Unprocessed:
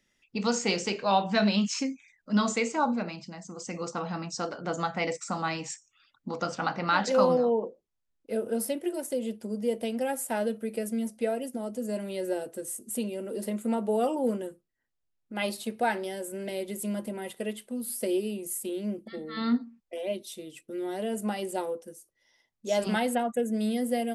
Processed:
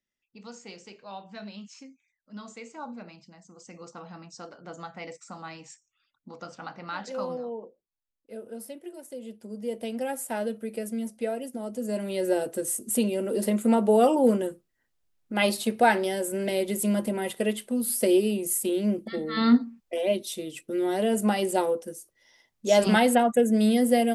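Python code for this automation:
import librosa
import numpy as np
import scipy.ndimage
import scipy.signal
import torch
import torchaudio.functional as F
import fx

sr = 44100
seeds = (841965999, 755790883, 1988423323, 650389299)

y = fx.gain(x, sr, db=fx.line((2.42, -17.0), (3.09, -10.0), (9.04, -10.0), (9.95, -1.0), (11.53, -1.0), (12.47, 7.0)))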